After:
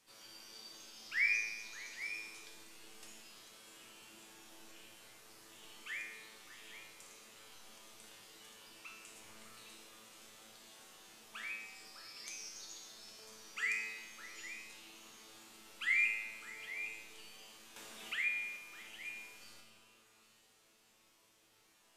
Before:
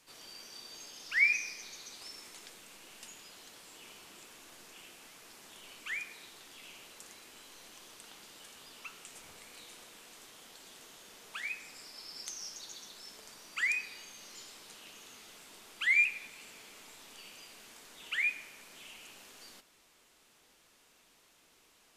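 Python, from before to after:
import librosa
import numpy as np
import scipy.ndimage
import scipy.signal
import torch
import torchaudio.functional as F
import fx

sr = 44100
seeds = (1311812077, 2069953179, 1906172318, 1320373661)

y = fx.comb_fb(x, sr, f0_hz=110.0, decay_s=0.99, harmonics='all', damping=0.0, mix_pct=90)
y = fx.echo_stepped(y, sr, ms=202, hz=160.0, octaves=1.4, feedback_pct=70, wet_db=-1)
y = fx.band_squash(y, sr, depth_pct=40, at=(17.76, 18.57))
y = y * 10.0 ** (9.0 / 20.0)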